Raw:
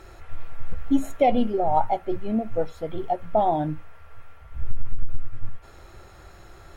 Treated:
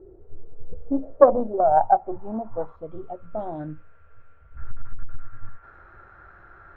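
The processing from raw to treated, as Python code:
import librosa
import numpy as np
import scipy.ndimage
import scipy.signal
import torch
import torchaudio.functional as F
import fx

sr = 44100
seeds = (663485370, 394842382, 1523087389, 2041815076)

y = fx.band_shelf(x, sr, hz=1200.0, db=-11.5, octaves=1.7, at=(2.76, 4.57))
y = fx.filter_sweep_lowpass(y, sr, from_hz=400.0, to_hz=1500.0, start_s=0.5, end_s=3.48, q=6.2)
y = fx.doppler_dist(y, sr, depth_ms=0.35)
y = F.gain(torch.from_numpy(y), -6.5).numpy()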